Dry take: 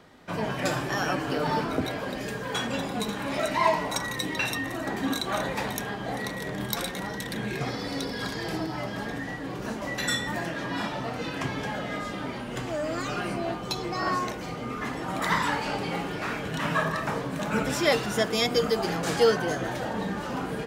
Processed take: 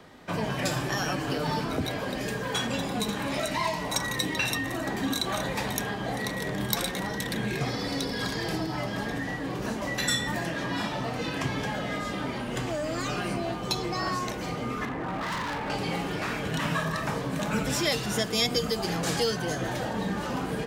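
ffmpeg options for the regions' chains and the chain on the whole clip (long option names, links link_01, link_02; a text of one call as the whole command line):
ffmpeg -i in.wav -filter_complex "[0:a]asettb=1/sr,asplit=3[link_01][link_02][link_03];[link_01]atrim=end=14.854[link_04];[link_02]atrim=start=14.85:end=15.7,asetpts=PTS-STARTPTS,afade=type=in:duration=0.004:curve=qsin,afade=type=out:start_time=0.846:duration=0.004:curve=qsin,lowpass=frequency=2100:width=0.5412,lowpass=frequency=2100:width=1.3066,asoftclip=type=hard:threshold=-30.5dB[link_05];[link_03]atrim=start=15.696[link_06];[link_04][link_05]acrossfade=duration=0.004:curve1=hsin:curve2=qsin[link_07];[link_07][link_06]acrossfade=duration=0.004:curve1=qsin:curve2=hsin,bandreject=frequency=1400:width=28,acrossover=split=180|3000[link_08][link_09][link_10];[link_09]acompressor=threshold=-33dB:ratio=3[link_11];[link_08][link_11][link_10]amix=inputs=3:normalize=0,volume=3dB" out.wav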